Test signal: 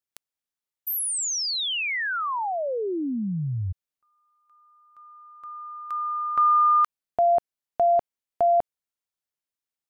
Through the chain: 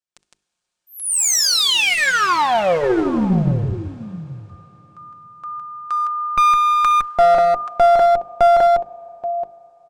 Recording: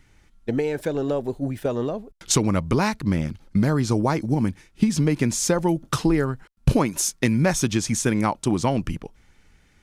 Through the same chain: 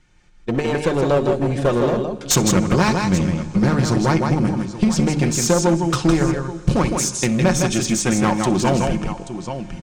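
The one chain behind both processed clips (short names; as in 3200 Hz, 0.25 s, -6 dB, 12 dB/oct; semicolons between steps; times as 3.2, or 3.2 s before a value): steep low-pass 9000 Hz 36 dB/oct; notch 2000 Hz, Q 13; tapped delay 63/160/831 ms -19.5/-5/-15.5 dB; AGC gain up to 12 dB; notches 50/100/150/200/250/300/350/400/450 Hz; Schroeder reverb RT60 3.9 s, combs from 25 ms, DRR 18 dB; one-sided clip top -16 dBFS; comb 5.6 ms, depth 40%; gain -1.5 dB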